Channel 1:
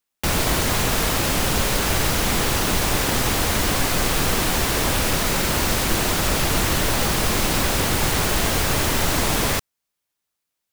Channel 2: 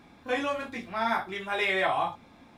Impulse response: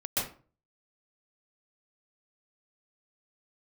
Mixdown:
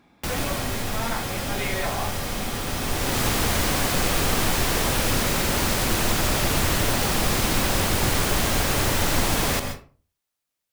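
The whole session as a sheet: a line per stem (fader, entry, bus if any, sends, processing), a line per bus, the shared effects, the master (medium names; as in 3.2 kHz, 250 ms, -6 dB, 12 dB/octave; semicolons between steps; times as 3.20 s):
-4.0 dB, 0.00 s, send -12.5 dB, auto duck -16 dB, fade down 0.80 s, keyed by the second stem
-4.0 dB, 0.00 s, no send, none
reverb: on, RT60 0.40 s, pre-delay 118 ms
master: none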